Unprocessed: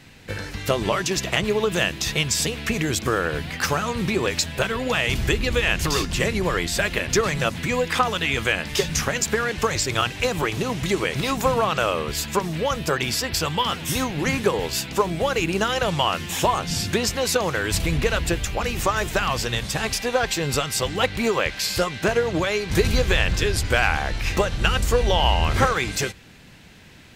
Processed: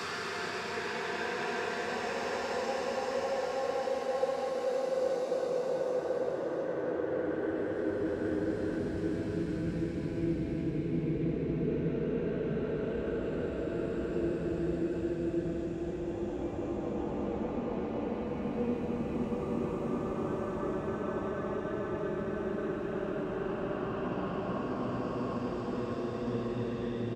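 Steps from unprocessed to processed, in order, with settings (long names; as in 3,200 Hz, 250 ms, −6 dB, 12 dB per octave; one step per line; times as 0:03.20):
far-end echo of a speakerphone 150 ms, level −7 dB
band-pass filter sweep 3,000 Hz → 280 Hz, 0:16.32–0:17.74
downward compressor, threshold −31 dBFS, peak gain reduction 13 dB
extreme stretch with random phases 10×, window 0.50 s, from 0:16.83
level +3 dB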